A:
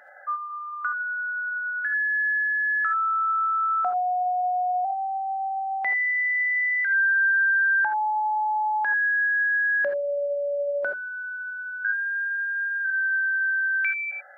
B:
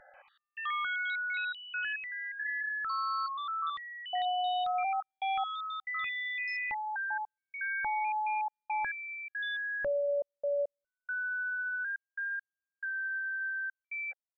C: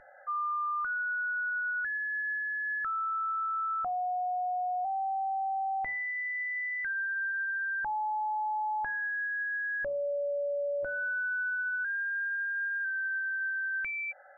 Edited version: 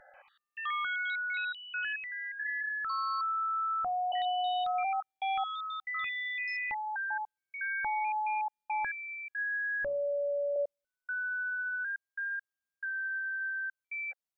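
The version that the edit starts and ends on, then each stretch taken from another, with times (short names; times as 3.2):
B
3.21–4.12 from C
9.38–10.56 from C
not used: A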